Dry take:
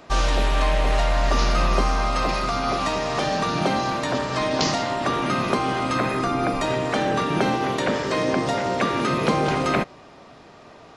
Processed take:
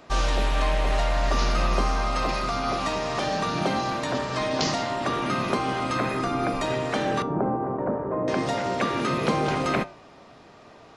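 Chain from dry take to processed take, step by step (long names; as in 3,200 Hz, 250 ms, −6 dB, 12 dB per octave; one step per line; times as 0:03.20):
0:07.22–0:08.28: low-pass filter 1,100 Hz 24 dB per octave
flanger 0.44 Hz, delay 7.9 ms, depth 2.2 ms, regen −86%
level +1.5 dB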